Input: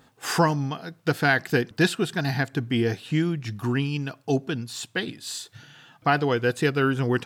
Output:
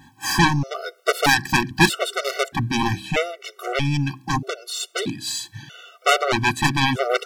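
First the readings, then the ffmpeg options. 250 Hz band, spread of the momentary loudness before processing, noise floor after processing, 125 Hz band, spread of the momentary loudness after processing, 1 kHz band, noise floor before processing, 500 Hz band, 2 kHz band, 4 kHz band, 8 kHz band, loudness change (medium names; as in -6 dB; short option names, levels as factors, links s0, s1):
+0.5 dB, 9 LU, -56 dBFS, +1.0 dB, 10 LU, +6.0 dB, -59 dBFS, +1.0 dB, +5.0 dB, +8.5 dB, +8.5 dB, +3.5 dB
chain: -af "aeval=exprs='0.398*(cos(1*acos(clip(val(0)/0.398,-1,1)))-cos(1*PI/2))+0.158*(cos(7*acos(clip(val(0)/0.398,-1,1)))-cos(7*PI/2))':c=same,bandreject=f=64.62:t=h:w=4,bandreject=f=129.24:t=h:w=4,bandreject=f=193.86:t=h:w=4,bandreject=f=258.48:t=h:w=4,bandreject=f=323.1:t=h:w=4,afftfilt=real='re*gt(sin(2*PI*0.79*pts/sr)*(1-2*mod(floor(b*sr/1024/380),2)),0)':imag='im*gt(sin(2*PI*0.79*pts/sr)*(1-2*mod(floor(b*sr/1024/380),2)),0)':win_size=1024:overlap=0.75,volume=1.88"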